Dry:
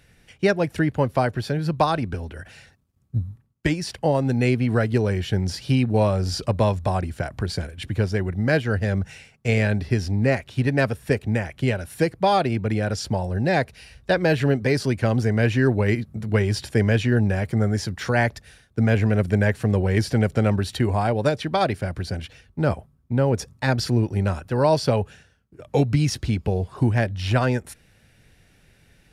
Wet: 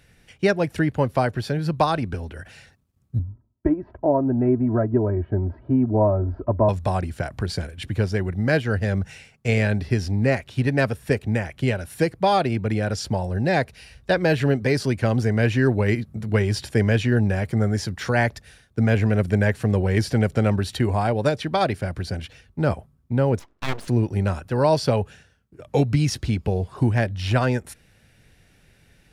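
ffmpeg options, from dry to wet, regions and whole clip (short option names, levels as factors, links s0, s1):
-filter_complex "[0:a]asettb=1/sr,asplit=3[s0][s1][s2];[s0]atrim=end=3.194[s3];[s1]atrim=start=3.19:end=6.69,asetpts=PTS-STARTPTS,afade=t=in:d=0.004:c=qsin,afade=t=out:st=3.496:d=0.004:c=qsin,lowpass=f=1100:w=0.5412,lowpass=f=1100:w=1.3066,aecho=1:1:3.1:0.75,atrim=end_sample=154350[s4];[s2]atrim=start=6.686[s5];[s3][s4]acrossfade=d=0.004:c1=hsin:c2=qsin[s6];[s6][s5]acrossfade=d=0.004:c1=qsin:c2=hsin,asettb=1/sr,asplit=3[s7][s8][s9];[s7]atrim=end=23.394[s10];[s8]atrim=start=23.39:end=23.88,asetpts=PTS-STARTPTS,afade=t=in:d=0.004:c=qsin,afade=t=out:st=0.486:d=0.004:c=qsin,highpass=260,lowpass=2500,bandreject=f=1400:w=12,aeval=exprs='abs(val(0))':c=same[s11];[s9]atrim=start=23.876[s12];[s10][s11]acrossfade=d=0.004:c1=hsin:c2=qsin[s13];[s13][s12]acrossfade=d=0.004:c1=qsin:c2=hsin"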